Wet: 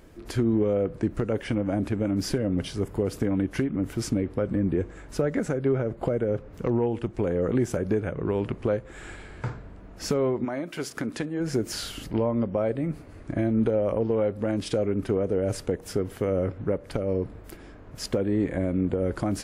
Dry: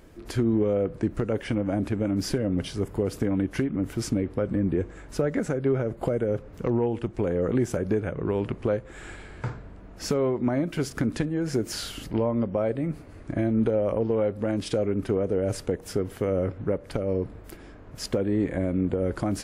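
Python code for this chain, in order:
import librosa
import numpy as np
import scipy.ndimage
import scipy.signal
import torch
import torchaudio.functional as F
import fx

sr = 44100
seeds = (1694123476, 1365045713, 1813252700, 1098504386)

y = fx.high_shelf(x, sr, hz=8000.0, db=-11.0, at=(5.68, 6.51))
y = fx.highpass(y, sr, hz=fx.line((10.44, 650.0), (11.39, 250.0)), slope=6, at=(10.44, 11.39), fade=0.02)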